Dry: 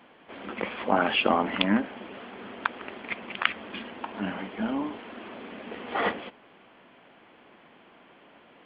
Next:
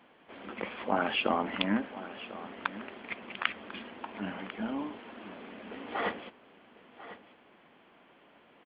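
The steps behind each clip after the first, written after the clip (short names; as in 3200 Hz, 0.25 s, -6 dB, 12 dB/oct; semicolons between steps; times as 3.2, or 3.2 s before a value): echo 1.046 s -15 dB; gain -5.5 dB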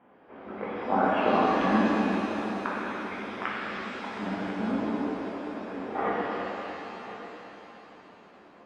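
LPF 1300 Hz 12 dB/oct; shimmer reverb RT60 3.2 s, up +7 st, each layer -8 dB, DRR -7 dB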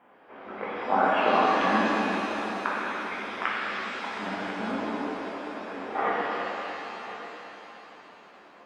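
low shelf 420 Hz -12 dB; gain +5 dB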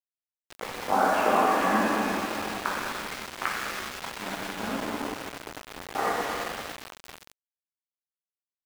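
treble ducked by the level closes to 2500 Hz, closed at -24 dBFS; sample gate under -30.5 dBFS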